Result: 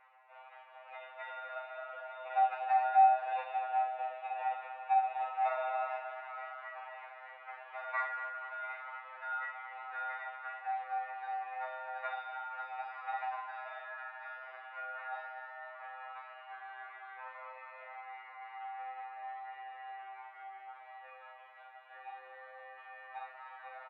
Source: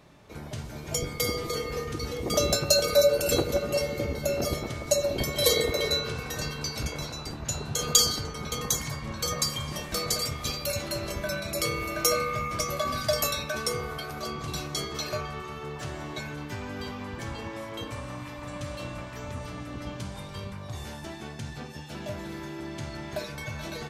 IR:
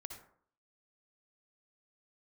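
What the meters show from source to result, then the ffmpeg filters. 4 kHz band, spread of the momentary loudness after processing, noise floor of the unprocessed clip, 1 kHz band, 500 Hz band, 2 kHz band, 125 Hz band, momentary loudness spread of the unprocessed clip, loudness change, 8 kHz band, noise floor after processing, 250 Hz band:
−30.5 dB, 18 LU, −41 dBFS, +4.0 dB, −17.5 dB, −6.0 dB, below −40 dB, 16 LU, −8.5 dB, below −40 dB, −54 dBFS, below −40 dB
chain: -filter_complex "[0:a]aemphasis=mode=reproduction:type=75kf,areverse,acompressor=mode=upward:threshold=-42dB:ratio=2.5,areverse,acrusher=samples=15:mix=1:aa=0.000001,aecho=1:1:241|482|723|964|1205|1446:0.251|0.141|0.0788|0.0441|0.0247|0.0138[link_01];[1:a]atrim=start_sample=2205,asetrate=79380,aresample=44100[link_02];[link_01][link_02]afir=irnorm=-1:irlink=0,highpass=frequency=520:width_type=q:width=0.5412,highpass=frequency=520:width_type=q:width=1.307,lowpass=frequency=2400:width_type=q:width=0.5176,lowpass=frequency=2400:width_type=q:width=0.7071,lowpass=frequency=2400:width_type=q:width=1.932,afreqshift=190,afftfilt=real='re*2.45*eq(mod(b,6),0)':imag='im*2.45*eq(mod(b,6),0)':win_size=2048:overlap=0.75,volume=6dB"

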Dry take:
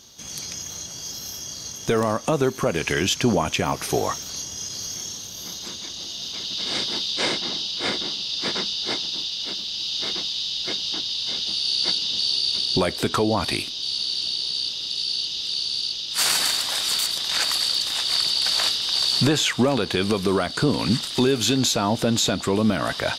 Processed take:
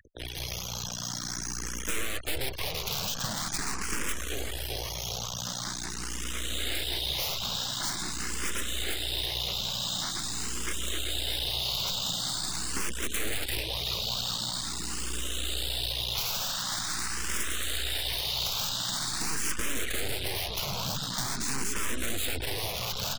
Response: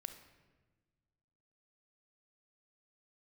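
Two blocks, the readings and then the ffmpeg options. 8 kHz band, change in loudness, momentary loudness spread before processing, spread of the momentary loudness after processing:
−3.5 dB, −8.0 dB, 11 LU, 5 LU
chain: -filter_complex "[0:a]bandreject=frequency=4600:width=11,alimiter=limit=-12.5dB:level=0:latency=1:release=10,equalizer=frequency=1600:width_type=o:width=1.6:gain=8.5,aeval=exprs='val(0)+0.01*(sin(2*PI*60*n/s)+sin(2*PI*2*60*n/s)/2+sin(2*PI*3*60*n/s)/3+sin(2*PI*4*60*n/s)/4+sin(2*PI*5*60*n/s)/5)':channel_layout=same,highshelf=frequency=3500:gain=-10,aecho=1:1:384|768|1152|1536|1920|2304|2688:0.237|0.14|0.0825|0.0487|0.0287|0.017|0.01,aeval=exprs='(mod(7.94*val(0)+1,2)-1)/7.94':channel_layout=same,acompressor=threshold=-27dB:ratio=10,acrusher=bits=3:dc=4:mix=0:aa=0.000001,acrossover=split=170|3000[link_01][link_02][link_03];[link_02]acompressor=threshold=-42dB:ratio=2.5[link_04];[link_01][link_04][link_03]amix=inputs=3:normalize=0,afftfilt=real='re*gte(hypot(re,im),0.00708)':imag='im*gte(hypot(re,im),0.00708)':win_size=1024:overlap=0.75,asplit=2[link_05][link_06];[link_06]afreqshift=0.45[link_07];[link_05][link_07]amix=inputs=2:normalize=1,volume=7dB"

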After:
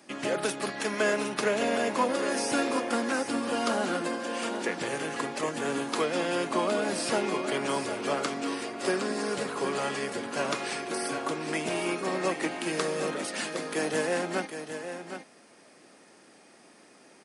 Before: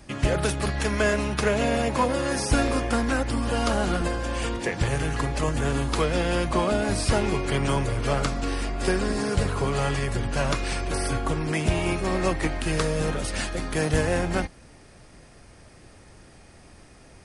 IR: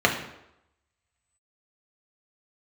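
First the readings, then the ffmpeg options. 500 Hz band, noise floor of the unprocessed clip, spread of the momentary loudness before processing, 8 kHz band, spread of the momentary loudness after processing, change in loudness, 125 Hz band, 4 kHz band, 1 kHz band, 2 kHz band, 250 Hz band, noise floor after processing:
−2.5 dB, −51 dBFS, 4 LU, −2.5 dB, 5 LU, −4.5 dB, −18.0 dB, −2.5 dB, −2.5 dB, −2.5 dB, −4.5 dB, −56 dBFS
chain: -af "highpass=frequency=220:width=0.5412,highpass=frequency=220:width=1.3066,aecho=1:1:763:0.355,volume=-3dB"

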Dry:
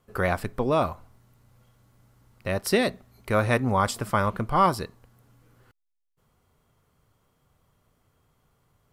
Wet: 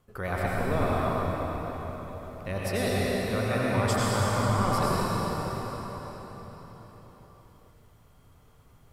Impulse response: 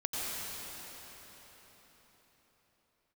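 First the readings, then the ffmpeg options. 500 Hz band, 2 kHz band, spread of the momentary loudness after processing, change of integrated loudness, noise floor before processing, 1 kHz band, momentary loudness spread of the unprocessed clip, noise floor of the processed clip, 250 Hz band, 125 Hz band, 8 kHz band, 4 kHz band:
−1.5 dB, −2.0 dB, 15 LU, −3.5 dB, −76 dBFS, −2.5 dB, 9 LU, −57 dBFS, −0.5 dB, +2.0 dB, +1.0 dB, 0.0 dB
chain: -filter_complex "[0:a]lowshelf=frequency=120:gain=5,areverse,acompressor=threshold=-29dB:ratio=6,areverse[link_01];[1:a]atrim=start_sample=2205[link_02];[link_01][link_02]afir=irnorm=-1:irlink=0,volume=1dB"

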